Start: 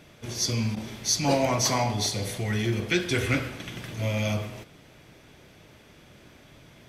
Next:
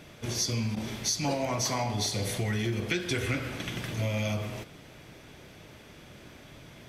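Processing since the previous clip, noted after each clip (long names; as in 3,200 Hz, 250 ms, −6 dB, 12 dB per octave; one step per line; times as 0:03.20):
downward compressor 6 to 1, threshold −29 dBFS, peak gain reduction 10.5 dB
level +2.5 dB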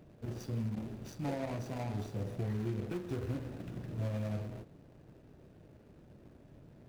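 running median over 41 samples
level −5 dB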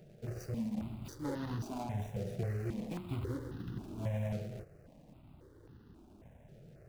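step-sequenced phaser 3.7 Hz 280–2,300 Hz
level +3 dB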